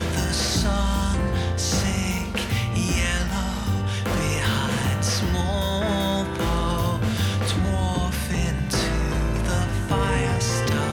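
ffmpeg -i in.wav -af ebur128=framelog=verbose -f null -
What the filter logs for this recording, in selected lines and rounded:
Integrated loudness:
  I:         -23.6 LUFS
  Threshold: -33.6 LUFS
Loudness range:
  LRA:         0.7 LU
  Threshold: -43.8 LUFS
  LRA low:   -24.1 LUFS
  LRA high:  -23.4 LUFS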